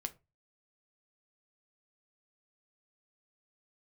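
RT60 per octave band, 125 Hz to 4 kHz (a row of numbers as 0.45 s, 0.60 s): 0.40 s, 0.25 s, 0.25 s, 0.25 s, 0.20 s, 0.15 s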